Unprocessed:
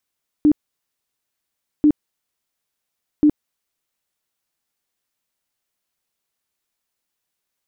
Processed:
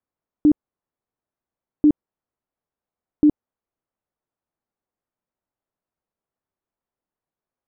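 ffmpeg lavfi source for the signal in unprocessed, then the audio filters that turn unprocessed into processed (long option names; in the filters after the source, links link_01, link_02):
-f lavfi -i "aevalsrc='0.355*sin(2*PI*299*mod(t,1.39))*lt(mod(t,1.39),20/299)':duration=4.17:sample_rate=44100"
-af "lowpass=1000"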